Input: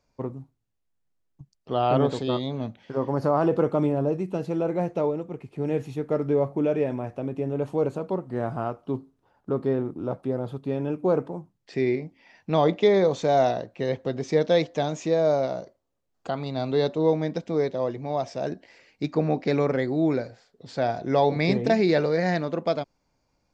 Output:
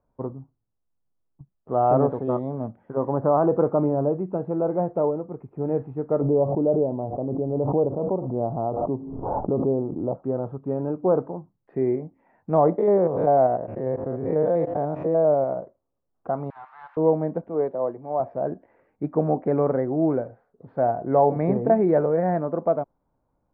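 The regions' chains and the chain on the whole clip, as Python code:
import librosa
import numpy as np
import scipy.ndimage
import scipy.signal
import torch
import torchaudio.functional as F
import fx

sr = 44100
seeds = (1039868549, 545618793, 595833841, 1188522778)

y = fx.chain(x, sr, fx.cheby2_lowpass(hz=3000.0, order=4, stop_db=60),
    fx.pre_swell(db_per_s=28.0), at=(6.21, 10.15))
y = fx.chain(y, sr, fx.spec_steps(hold_ms=100),
    fx.pre_swell(db_per_s=52.0), at=(12.78, 15.57))
y = fx.chain(y, sr, fx.crossing_spikes(level_db=-21.0),
    fx.steep_highpass(hz=810.0, slope=72),
    fx.doppler_dist(depth_ms=0.29), at=(16.5, 16.97))
y = fx.chain(y, sr, fx.highpass(hz=290.0, slope=6),
    fx.band_widen(depth_pct=40), at=(17.49, 18.2))
y = fx.dynamic_eq(y, sr, hz=680.0, q=1.3, threshold_db=-36.0, ratio=4.0, max_db=4)
y = scipy.signal.sosfilt(scipy.signal.butter(4, 1300.0, 'lowpass', fs=sr, output='sos'), y)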